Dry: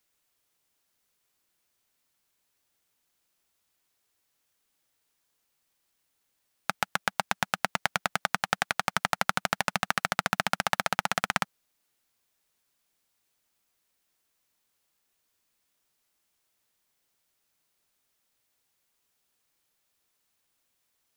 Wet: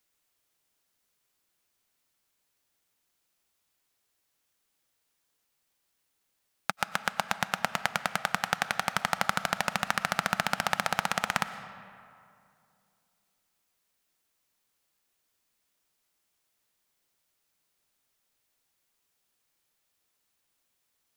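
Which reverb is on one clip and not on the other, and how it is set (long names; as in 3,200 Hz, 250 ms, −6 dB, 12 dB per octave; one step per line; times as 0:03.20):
comb and all-pass reverb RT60 2.5 s, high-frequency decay 0.55×, pre-delay 75 ms, DRR 12 dB
level −1 dB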